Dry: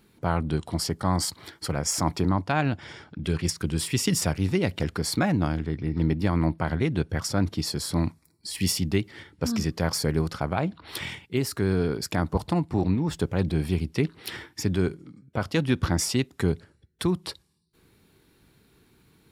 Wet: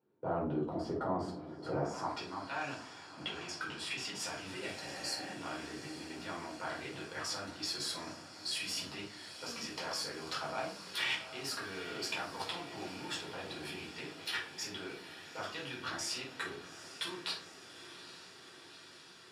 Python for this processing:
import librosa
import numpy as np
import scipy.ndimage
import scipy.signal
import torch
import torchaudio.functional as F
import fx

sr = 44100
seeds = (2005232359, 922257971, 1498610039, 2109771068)

y = fx.law_mismatch(x, sr, coded='A')
y = fx.highpass(y, sr, hz=150.0, slope=6)
y = fx.peak_eq(y, sr, hz=2000.0, db=-5.5, octaves=0.38)
y = fx.level_steps(y, sr, step_db=21)
y = fx.spec_repair(y, sr, seeds[0], start_s=4.79, length_s=0.49, low_hz=340.0, high_hz=4000.0, source='after')
y = fx.echo_diffused(y, sr, ms=837, feedback_pct=73, wet_db=-12.5)
y = fx.room_shoebox(y, sr, seeds[1], volume_m3=310.0, walls='furnished', distance_m=4.7)
y = fx.filter_sweep_bandpass(y, sr, from_hz=490.0, to_hz=2300.0, start_s=1.76, end_s=2.28, q=0.77)
y = fx.high_shelf(y, sr, hz=7200.0, db=fx.steps((0.0, -9.5), (4.19, 2.0)))
y = F.gain(torch.from_numpy(y), 3.0).numpy()